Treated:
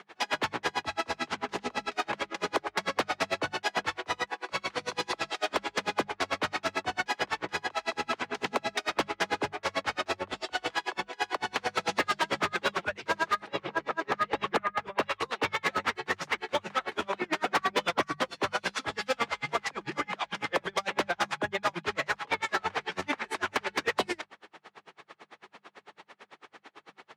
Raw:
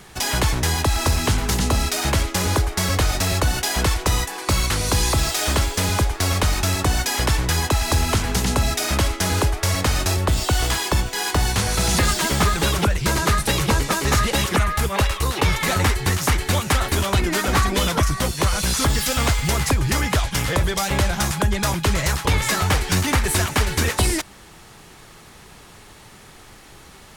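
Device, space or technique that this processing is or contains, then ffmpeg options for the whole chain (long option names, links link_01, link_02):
helicopter radio: -filter_complex "[0:a]asettb=1/sr,asplit=3[link_01][link_02][link_03];[link_01]atrim=end=13.404[link_04];[link_02]atrim=start=13.4:end=15.03,asetpts=PTS-STARTPTS,afade=type=in:duration=0.004:curve=qsin,afade=type=out:start_time=1.626:duration=0.004:curve=qsin,aemphasis=mode=reproduction:type=75kf[link_05];[link_03]atrim=start=15.026[link_06];[link_04][link_05]acrossfade=duration=0.004:curve1=hsin:curve2=qsin[link_07];[link_07][link_06]acrossfade=duration=0.004:curve1=qsin:curve2=hsin,highpass=400,lowpass=2800,aeval=exprs='val(0)*pow(10,-39*(0.5-0.5*cos(2*PI*9*n/s))/20)':channel_layout=same,asoftclip=type=hard:threshold=-23dB,highpass=76,bandreject=frequency=50:width_type=h:width=6,bandreject=frequency=100:width_type=h:width=6,bandreject=frequency=150:width_type=h:width=6,bandreject=frequency=200:width_type=h:width=6,volume=3dB"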